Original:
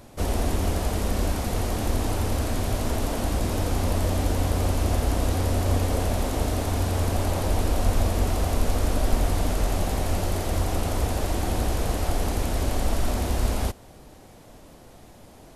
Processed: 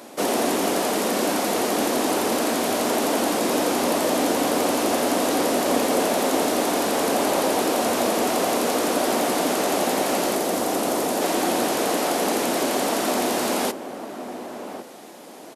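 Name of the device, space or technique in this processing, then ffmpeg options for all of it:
parallel distortion: -filter_complex "[0:a]highpass=f=240:w=0.5412,highpass=f=240:w=1.3066,asettb=1/sr,asplit=3[s0][s1][s2];[s0]atrim=end=10.354[s3];[s1]atrim=start=10.35:end=11.22,asetpts=PTS-STARTPTS,afade=t=in:d=0.004:c=qsin,afade=t=out:st=0.866:d=0.004:c=qsin,equalizer=f=2200:w=0.47:g=-4[s4];[s2]atrim=start=11.216[s5];[s3][s4]acrossfade=d=0.004:c1=hsin:c2=qsin[s6];[s6][s5]acrossfade=d=0.004:c1=qsin:c2=hsin,asplit=2[s7][s8];[s8]asoftclip=type=hard:threshold=0.0335,volume=0.224[s9];[s7][s9]amix=inputs=2:normalize=0,asplit=2[s10][s11];[s11]adelay=1108,volume=0.316,highshelf=f=4000:g=-24.9[s12];[s10][s12]amix=inputs=2:normalize=0,volume=2.24"

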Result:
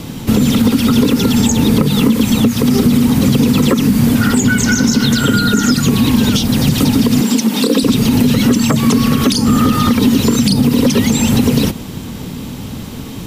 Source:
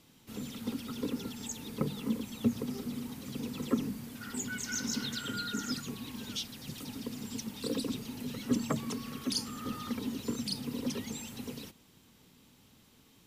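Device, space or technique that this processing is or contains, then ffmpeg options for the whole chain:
mastering chain: -filter_complex "[0:a]equalizer=f=360:t=o:w=0.77:g=-2.5,acrossover=split=1200|7100[s0][s1][s2];[s0]acompressor=threshold=0.00794:ratio=4[s3];[s1]acompressor=threshold=0.00708:ratio=4[s4];[s2]acompressor=threshold=0.00355:ratio=4[s5];[s3][s4][s5]amix=inputs=3:normalize=0,acompressor=threshold=0.00708:ratio=3,tiltshelf=f=760:g=5.5,asoftclip=type=hard:threshold=0.0251,alimiter=level_in=56.2:limit=0.891:release=50:level=0:latency=1,asettb=1/sr,asplit=3[s6][s7][s8];[s6]atrim=end=7.214[s9];[s7]atrim=start=7.21:end=7.83,asetpts=PTS-STARTPTS,afade=t=in:d=0.004:c=qsin,afade=t=out:st=0.616:d=0.004:c=qsin,highpass=f=200:w=0.5412,highpass=f=200:w=1.3066[s10];[s8]atrim=start=7.826[s11];[s9][s10]acrossfade=d=0.004:c1=hsin:c2=qsin[s12];[s12][s11]acrossfade=d=0.004:c1=qsin:c2=hsin,volume=0.841"

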